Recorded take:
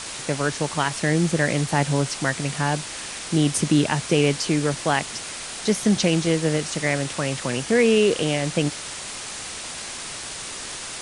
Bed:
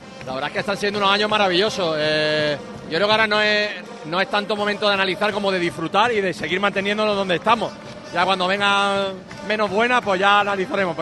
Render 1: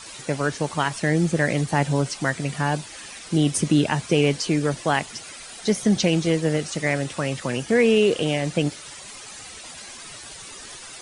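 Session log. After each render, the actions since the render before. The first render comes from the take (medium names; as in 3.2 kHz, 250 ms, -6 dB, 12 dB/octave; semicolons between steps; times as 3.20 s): noise reduction 11 dB, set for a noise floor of -34 dBFS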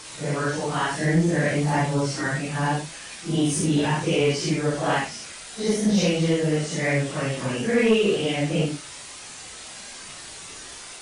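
phase randomisation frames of 200 ms; saturation -10.5 dBFS, distortion -21 dB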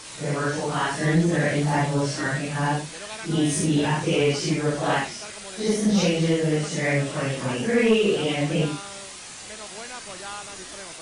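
add bed -22 dB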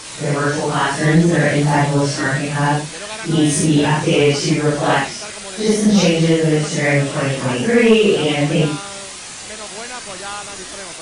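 trim +7.5 dB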